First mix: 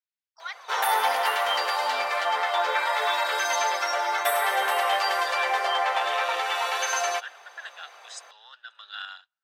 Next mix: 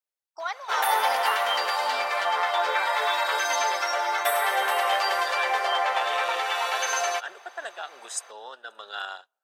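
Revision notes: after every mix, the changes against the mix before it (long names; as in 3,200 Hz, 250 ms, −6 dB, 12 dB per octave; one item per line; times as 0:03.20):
speech: remove flat-topped band-pass 2,800 Hz, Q 0.76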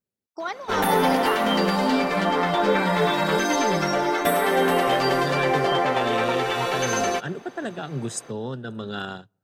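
master: remove high-pass filter 680 Hz 24 dB per octave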